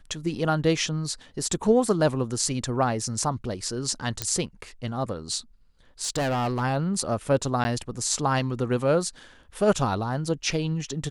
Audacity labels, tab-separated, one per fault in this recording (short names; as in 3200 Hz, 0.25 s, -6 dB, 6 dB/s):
4.220000	4.220000	pop -9 dBFS
6.030000	6.630000	clipped -22.5 dBFS
7.640000	7.650000	gap 10 ms